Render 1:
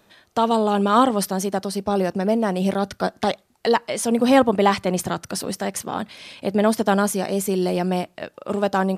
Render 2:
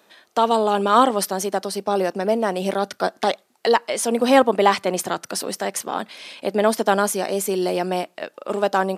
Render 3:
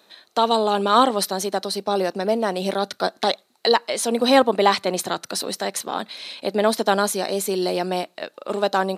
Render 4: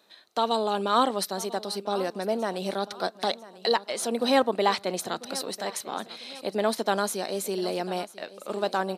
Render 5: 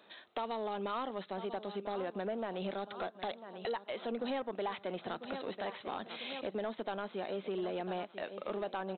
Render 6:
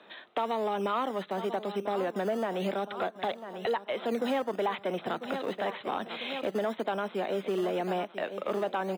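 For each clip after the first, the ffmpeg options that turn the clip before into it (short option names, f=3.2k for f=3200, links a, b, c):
-af "highpass=300,volume=2dB"
-af "equalizer=f=4k:t=o:w=0.23:g=12,volume=-1dB"
-af "aecho=1:1:996|1992|2988:0.133|0.0533|0.0213,volume=-6.5dB"
-af "acompressor=threshold=-37dB:ratio=4,aresample=8000,asoftclip=type=tanh:threshold=-31.5dB,aresample=44100,volume=3dB"
-filter_complex "[0:a]highpass=120,lowpass=3.6k,acrossover=split=250|550[a][b][c];[a]acrusher=samples=22:mix=1:aa=0.000001:lfo=1:lforange=13.2:lforate=0.96[d];[d][b][c]amix=inputs=3:normalize=0,volume=7.5dB"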